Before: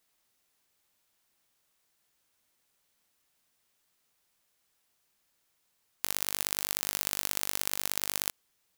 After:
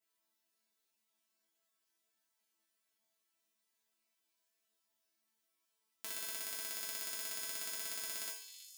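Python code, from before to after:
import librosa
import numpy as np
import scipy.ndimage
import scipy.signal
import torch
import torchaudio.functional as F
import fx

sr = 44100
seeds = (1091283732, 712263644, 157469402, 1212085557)

y = scipy.signal.sosfilt(scipy.signal.butter(2, 46.0, 'highpass', fs=sr, output='sos'), x)
y = fx.resonator_bank(y, sr, root=57, chord='fifth', decay_s=0.52)
y = fx.echo_stepped(y, sr, ms=324, hz=3900.0, octaves=0.7, feedback_pct=70, wet_db=-7)
y = y * 10.0 ** (10.0 / 20.0)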